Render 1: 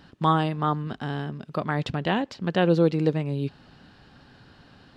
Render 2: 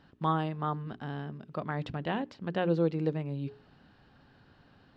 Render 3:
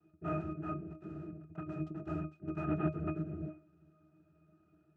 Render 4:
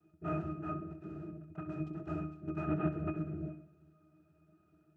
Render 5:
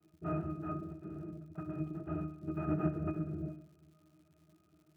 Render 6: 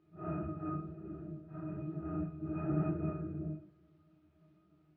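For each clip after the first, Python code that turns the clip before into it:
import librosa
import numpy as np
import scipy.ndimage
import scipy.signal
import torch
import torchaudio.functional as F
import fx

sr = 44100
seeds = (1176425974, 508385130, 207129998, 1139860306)

y1 = fx.lowpass(x, sr, hz=2700.0, slope=6)
y1 = fx.hum_notches(y1, sr, base_hz=60, count=7)
y1 = F.gain(torch.from_numpy(y1), -7.0).numpy()
y2 = fx.noise_vocoder(y1, sr, seeds[0], bands=3)
y2 = fx.octave_resonator(y2, sr, note='D#', decay_s=0.18)
y2 = F.gain(torch.from_numpy(y2), 5.0).numpy()
y3 = fx.echo_feedback(y2, sr, ms=65, feedback_pct=56, wet_db=-12.5)
y4 = fx.air_absorb(y3, sr, metres=450.0)
y4 = fx.dmg_crackle(y4, sr, seeds[1], per_s=190.0, level_db=-61.0)
y4 = F.gain(torch.from_numpy(y4), 1.0).numpy()
y5 = fx.phase_scramble(y4, sr, seeds[2], window_ms=200)
y5 = fx.air_absorb(y5, sr, metres=290.0)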